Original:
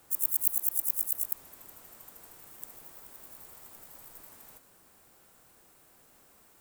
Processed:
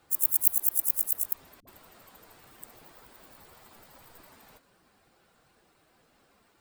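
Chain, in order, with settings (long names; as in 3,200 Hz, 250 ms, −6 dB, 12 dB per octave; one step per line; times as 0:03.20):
spectral dynamics exaggerated over time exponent 1.5
0:01.60–0:02.36: all-pass dispersion highs, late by 72 ms, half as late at 370 Hz
level +5.5 dB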